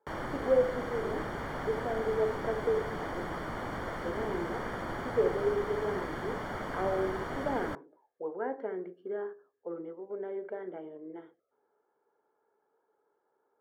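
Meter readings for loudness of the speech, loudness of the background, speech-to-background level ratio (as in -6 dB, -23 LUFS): -35.0 LUFS, -37.5 LUFS, 2.5 dB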